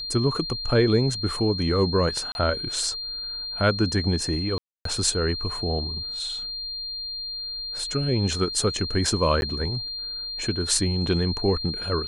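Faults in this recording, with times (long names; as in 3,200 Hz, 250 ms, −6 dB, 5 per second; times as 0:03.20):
whistle 4,200 Hz −30 dBFS
0:02.32–0:02.35: drop-out 31 ms
0:04.58–0:04.85: drop-out 273 ms
0:09.41–0:09.42: drop-out 11 ms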